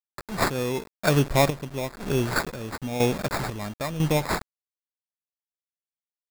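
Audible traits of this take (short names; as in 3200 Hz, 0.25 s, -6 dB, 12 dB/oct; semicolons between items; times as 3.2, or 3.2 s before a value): a quantiser's noise floor 6-bit, dither none; chopped level 1 Hz, depth 65%, duty 50%; aliases and images of a low sample rate 3000 Hz, jitter 0%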